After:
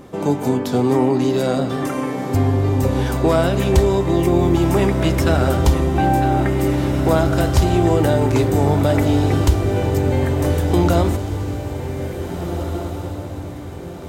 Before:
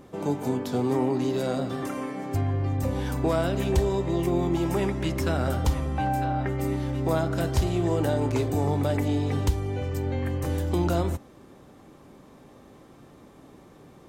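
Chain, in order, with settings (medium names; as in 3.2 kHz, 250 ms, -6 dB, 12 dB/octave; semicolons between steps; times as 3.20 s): echo that smears into a reverb 1805 ms, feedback 42%, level -8 dB; trim +8.5 dB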